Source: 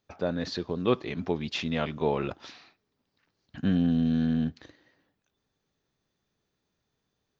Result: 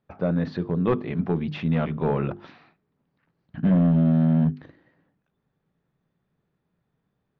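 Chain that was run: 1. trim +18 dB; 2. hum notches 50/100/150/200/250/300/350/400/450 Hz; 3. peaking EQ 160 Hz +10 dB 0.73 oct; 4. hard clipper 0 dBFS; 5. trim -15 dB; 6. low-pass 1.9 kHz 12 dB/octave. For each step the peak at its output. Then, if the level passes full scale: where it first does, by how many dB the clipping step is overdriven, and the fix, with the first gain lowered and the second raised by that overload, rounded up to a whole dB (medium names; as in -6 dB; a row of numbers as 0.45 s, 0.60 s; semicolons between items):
+7.0 dBFS, +6.5 dBFS, +8.0 dBFS, 0.0 dBFS, -15.0 dBFS, -14.5 dBFS; step 1, 8.0 dB; step 1 +10 dB, step 5 -7 dB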